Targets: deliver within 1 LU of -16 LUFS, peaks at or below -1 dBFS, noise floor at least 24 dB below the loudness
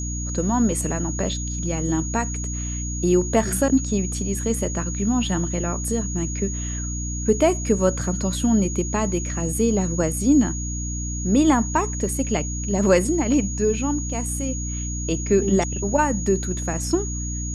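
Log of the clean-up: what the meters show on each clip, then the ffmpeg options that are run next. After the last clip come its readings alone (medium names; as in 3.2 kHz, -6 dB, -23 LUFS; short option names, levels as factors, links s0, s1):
hum 60 Hz; highest harmonic 300 Hz; hum level -26 dBFS; steady tone 6.7 kHz; tone level -31 dBFS; loudness -22.5 LUFS; peak level -5.5 dBFS; loudness target -16.0 LUFS
-> -af "bandreject=f=60:t=h:w=6,bandreject=f=120:t=h:w=6,bandreject=f=180:t=h:w=6,bandreject=f=240:t=h:w=6,bandreject=f=300:t=h:w=6"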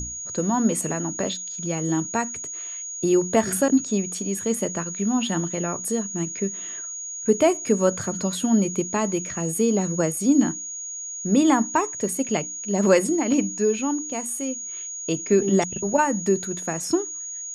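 hum not found; steady tone 6.7 kHz; tone level -31 dBFS
-> -af "bandreject=f=6700:w=30"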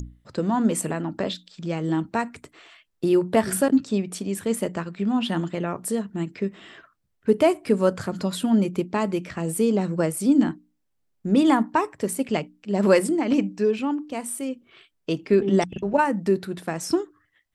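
steady tone not found; loudness -24.0 LUFS; peak level -7.0 dBFS; loudness target -16.0 LUFS
-> -af "volume=2.51,alimiter=limit=0.891:level=0:latency=1"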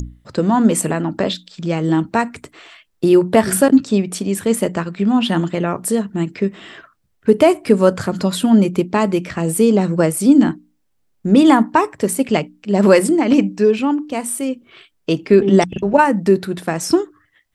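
loudness -16.5 LUFS; peak level -1.0 dBFS; noise floor -64 dBFS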